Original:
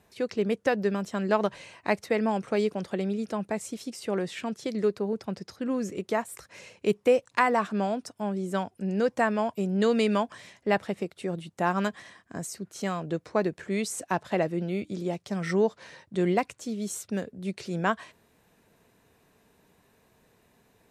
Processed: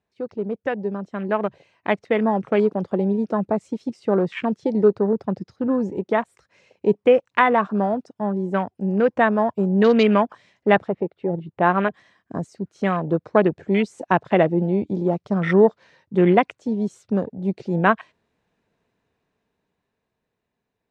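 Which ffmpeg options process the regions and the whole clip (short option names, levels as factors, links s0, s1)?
-filter_complex "[0:a]asettb=1/sr,asplit=3[s0][s1][s2];[s0]atrim=end=10.884[s3];[s1]atrim=start=10.88:end=11.94,asetpts=PTS-STARTPTS,afade=t=in:d=0.004:c=qsin,afade=t=out:st=1.056:d=0.004:c=qsin,lowpass=2600,equalizer=f=220:t=o:w=0.4:g=-6.5[s4];[s2]atrim=start=11.936[s5];[s3][s4]acrossfade=d=0.004:c1=hsin:c2=qsin[s6];[s6][s5]acrossfade=d=0.004:c1=qsin:c2=hsin,afwtdn=0.0126,lowpass=5000,dynaudnorm=f=190:g=21:m=3.76"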